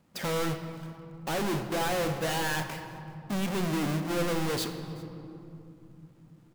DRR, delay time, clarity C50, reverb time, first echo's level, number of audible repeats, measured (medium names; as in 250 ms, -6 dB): 6.5 dB, 383 ms, 8.0 dB, 3.0 s, -23.0 dB, 1